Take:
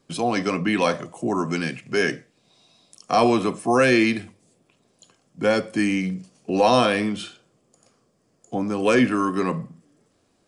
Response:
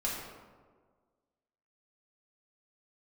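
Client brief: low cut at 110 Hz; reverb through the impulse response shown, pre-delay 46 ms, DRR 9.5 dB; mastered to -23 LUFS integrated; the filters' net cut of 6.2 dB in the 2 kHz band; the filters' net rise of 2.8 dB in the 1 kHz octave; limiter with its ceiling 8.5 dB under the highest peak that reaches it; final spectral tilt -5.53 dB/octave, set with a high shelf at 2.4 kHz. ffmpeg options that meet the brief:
-filter_complex "[0:a]highpass=110,equalizer=f=1000:t=o:g=6.5,equalizer=f=2000:t=o:g=-6.5,highshelf=f=2400:g=-7.5,alimiter=limit=0.237:level=0:latency=1,asplit=2[s0][s1];[1:a]atrim=start_sample=2205,adelay=46[s2];[s1][s2]afir=irnorm=-1:irlink=0,volume=0.188[s3];[s0][s3]amix=inputs=2:normalize=0,volume=1.12"

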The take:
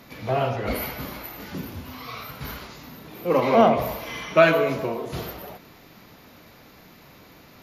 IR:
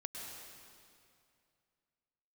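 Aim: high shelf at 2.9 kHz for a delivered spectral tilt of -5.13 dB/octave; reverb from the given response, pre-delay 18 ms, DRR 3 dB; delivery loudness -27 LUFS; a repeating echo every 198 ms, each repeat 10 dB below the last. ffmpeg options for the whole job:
-filter_complex "[0:a]highshelf=f=2900:g=-8,aecho=1:1:198|396|594|792:0.316|0.101|0.0324|0.0104,asplit=2[s0][s1];[1:a]atrim=start_sample=2205,adelay=18[s2];[s1][s2]afir=irnorm=-1:irlink=0,volume=0.794[s3];[s0][s3]amix=inputs=2:normalize=0,volume=0.501"

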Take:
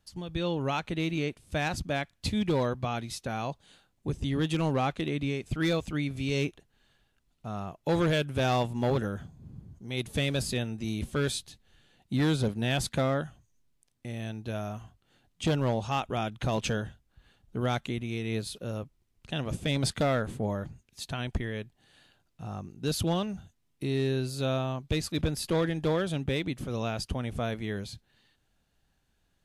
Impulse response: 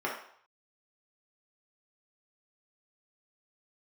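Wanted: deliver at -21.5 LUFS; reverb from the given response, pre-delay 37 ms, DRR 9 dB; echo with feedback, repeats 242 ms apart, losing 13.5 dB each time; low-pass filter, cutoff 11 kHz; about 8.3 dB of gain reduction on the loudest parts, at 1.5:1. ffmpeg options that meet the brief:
-filter_complex "[0:a]lowpass=11000,acompressor=threshold=0.00447:ratio=1.5,aecho=1:1:242|484:0.211|0.0444,asplit=2[s0][s1];[1:a]atrim=start_sample=2205,adelay=37[s2];[s1][s2]afir=irnorm=-1:irlink=0,volume=0.133[s3];[s0][s3]amix=inputs=2:normalize=0,volume=7.08"

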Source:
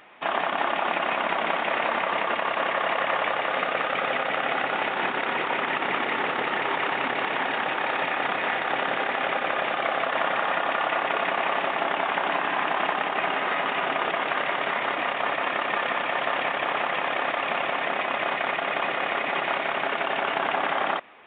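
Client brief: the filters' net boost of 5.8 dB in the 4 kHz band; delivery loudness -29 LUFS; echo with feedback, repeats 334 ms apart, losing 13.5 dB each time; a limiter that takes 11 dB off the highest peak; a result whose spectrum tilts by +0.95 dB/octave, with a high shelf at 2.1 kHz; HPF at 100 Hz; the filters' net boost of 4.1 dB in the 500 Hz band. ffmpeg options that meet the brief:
-af "highpass=100,equalizer=f=500:t=o:g=5,highshelf=f=2100:g=4,equalizer=f=4000:t=o:g=4.5,alimiter=limit=0.141:level=0:latency=1,aecho=1:1:334|668:0.211|0.0444,volume=0.708"

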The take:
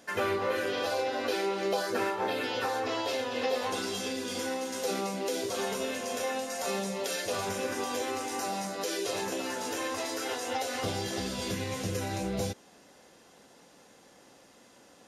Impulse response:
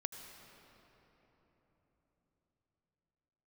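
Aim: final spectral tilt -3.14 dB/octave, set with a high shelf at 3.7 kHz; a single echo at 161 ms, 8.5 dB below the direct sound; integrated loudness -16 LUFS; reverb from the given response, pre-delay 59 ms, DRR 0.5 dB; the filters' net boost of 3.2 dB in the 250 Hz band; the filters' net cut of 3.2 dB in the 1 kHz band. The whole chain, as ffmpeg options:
-filter_complex "[0:a]equalizer=f=250:t=o:g=4.5,equalizer=f=1000:t=o:g=-5,highshelf=f=3700:g=4,aecho=1:1:161:0.376,asplit=2[s0][s1];[1:a]atrim=start_sample=2205,adelay=59[s2];[s1][s2]afir=irnorm=-1:irlink=0,volume=1.06[s3];[s0][s3]amix=inputs=2:normalize=0,volume=3.98"

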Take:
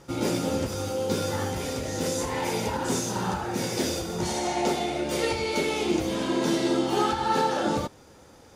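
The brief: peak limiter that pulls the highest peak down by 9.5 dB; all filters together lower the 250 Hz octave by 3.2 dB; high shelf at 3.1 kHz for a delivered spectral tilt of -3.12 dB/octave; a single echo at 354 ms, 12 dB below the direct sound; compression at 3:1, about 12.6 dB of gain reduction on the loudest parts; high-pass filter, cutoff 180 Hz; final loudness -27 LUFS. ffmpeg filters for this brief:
-af "highpass=180,equalizer=f=250:t=o:g=-3.5,highshelf=f=3100:g=8.5,acompressor=threshold=0.0126:ratio=3,alimiter=level_in=2.51:limit=0.0631:level=0:latency=1,volume=0.398,aecho=1:1:354:0.251,volume=4.47"

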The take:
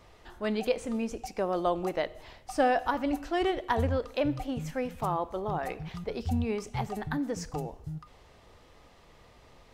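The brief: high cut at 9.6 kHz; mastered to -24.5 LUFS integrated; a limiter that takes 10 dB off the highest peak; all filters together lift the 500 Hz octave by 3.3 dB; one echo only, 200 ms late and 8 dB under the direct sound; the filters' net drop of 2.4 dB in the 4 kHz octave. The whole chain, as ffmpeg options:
-af "lowpass=9600,equalizer=f=500:t=o:g=4,equalizer=f=4000:t=o:g=-3.5,alimiter=limit=0.0794:level=0:latency=1,aecho=1:1:200:0.398,volume=2.37"

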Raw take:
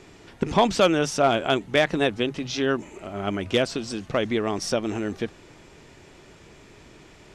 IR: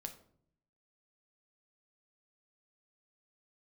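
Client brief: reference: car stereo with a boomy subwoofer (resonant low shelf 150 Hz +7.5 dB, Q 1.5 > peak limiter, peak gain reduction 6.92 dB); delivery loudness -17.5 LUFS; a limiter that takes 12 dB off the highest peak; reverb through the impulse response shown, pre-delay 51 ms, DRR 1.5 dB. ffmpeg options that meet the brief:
-filter_complex "[0:a]alimiter=limit=0.0841:level=0:latency=1,asplit=2[s0][s1];[1:a]atrim=start_sample=2205,adelay=51[s2];[s1][s2]afir=irnorm=-1:irlink=0,volume=1.26[s3];[s0][s3]amix=inputs=2:normalize=0,lowshelf=f=150:t=q:w=1.5:g=7.5,volume=4.73,alimiter=limit=0.376:level=0:latency=1"

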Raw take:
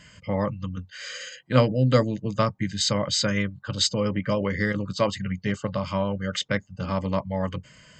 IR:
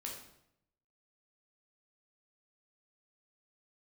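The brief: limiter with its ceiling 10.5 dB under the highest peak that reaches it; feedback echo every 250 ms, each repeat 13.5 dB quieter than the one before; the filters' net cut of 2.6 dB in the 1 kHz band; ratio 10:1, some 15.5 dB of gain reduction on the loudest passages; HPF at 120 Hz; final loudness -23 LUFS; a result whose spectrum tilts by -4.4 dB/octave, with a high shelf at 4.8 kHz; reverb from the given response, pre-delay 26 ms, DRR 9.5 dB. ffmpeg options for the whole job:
-filter_complex "[0:a]highpass=120,equalizer=f=1000:t=o:g=-3.5,highshelf=f=4800:g=7.5,acompressor=threshold=0.0316:ratio=10,alimiter=level_in=1.5:limit=0.0631:level=0:latency=1,volume=0.668,aecho=1:1:250|500:0.211|0.0444,asplit=2[s0][s1];[1:a]atrim=start_sample=2205,adelay=26[s2];[s1][s2]afir=irnorm=-1:irlink=0,volume=0.398[s3];[s0][s3]amix=inputs=2:normalize=0,volume=5.01"

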